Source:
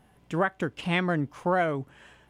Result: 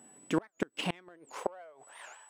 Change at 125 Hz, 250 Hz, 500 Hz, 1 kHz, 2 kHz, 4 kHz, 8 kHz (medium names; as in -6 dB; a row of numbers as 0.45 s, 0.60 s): -13.0 dB, -7.0 dB, -9.5 dB, -12.0 dB, -13.0 dB, -3.0 dB, no reading